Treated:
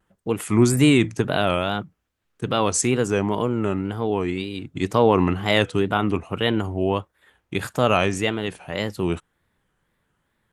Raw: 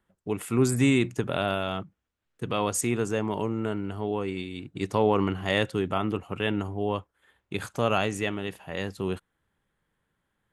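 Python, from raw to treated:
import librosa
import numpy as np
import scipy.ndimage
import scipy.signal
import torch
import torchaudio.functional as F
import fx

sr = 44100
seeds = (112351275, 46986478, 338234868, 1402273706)

y = fx.wow_flutter(x, sr, seeds[0], rate_hz=2.1, depth_cents=150.0)
y = y * librosa.db_to_amplitude(6.0)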